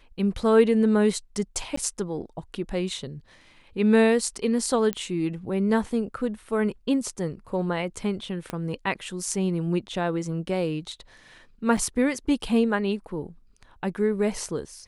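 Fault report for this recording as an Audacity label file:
1.760000	1.770000	drop-out
4.930000	4.930000	click −13 dBFS
8.500000	8.500000	click −17 dBFS
11.770000	11.780000	drop-out 5 ms

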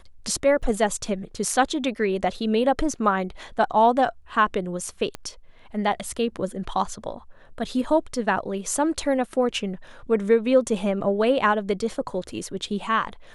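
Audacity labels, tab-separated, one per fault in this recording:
0.620000	0.630000	drop-out 6.1 ms
5.150000	5.150000	click −16 dBFS

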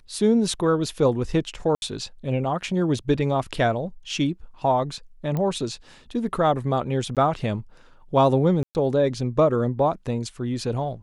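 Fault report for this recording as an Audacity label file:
1.750000	1.820000	drop-out 71 ms
5.370000	5.370000	click −16 dBFS
7.150000	7.170000	drop-out 17 ms
8.630000	8.750000	drop-out 119 ms

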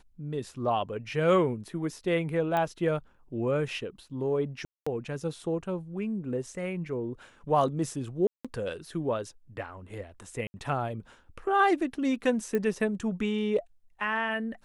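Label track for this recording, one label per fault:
2.570000	2.570000	click −17 dBFS
4.650000	4.870000	drop-out 215 ms
8.270000	8.450000	drop-out 176 ms
10.470000	10.540000	drop-out 70 ms
12.550000	12.550000	click −18 dBFS

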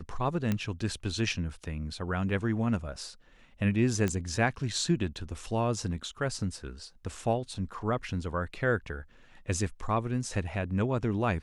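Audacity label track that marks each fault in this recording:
0.520000	0.520000	click −16 dBFS
4.080000	4.080000	click −17 dBFS

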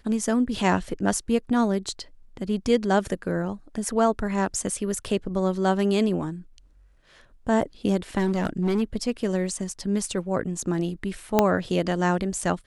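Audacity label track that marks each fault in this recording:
8.180000	8.830000	clipping −19 dBFS
11.390000	11.390000	click −4 dBFS

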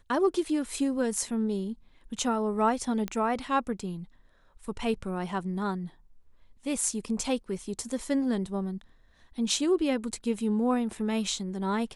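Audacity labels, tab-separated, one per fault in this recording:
3.080000	3.080000	click −18 dBFS

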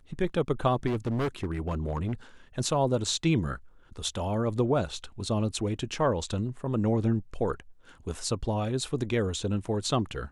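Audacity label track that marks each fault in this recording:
0.860000	2.140000	clipping −25 dBFS

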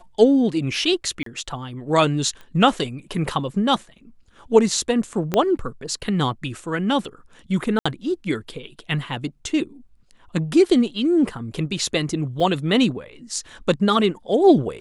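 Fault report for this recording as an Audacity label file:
1.230000	1.260000	drop-out 33 ms
2.410000	2.410000	click −27 dBFS
5.340000	5.340000	click −7 dBFS
7.790000	7.860000	drop-out 65 ms
12.400000	12.400000	drop-out 4 ms

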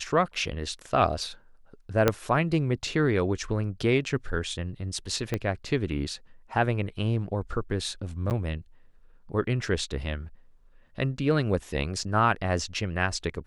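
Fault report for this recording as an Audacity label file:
2.080000	2.080000	click −6 dBFS
5.340000	5.340000	click −14 dBFS
8.300000	8.310000	drop-out 9.1 ms
12.030000	12.030000	drop-out 3.6 ms

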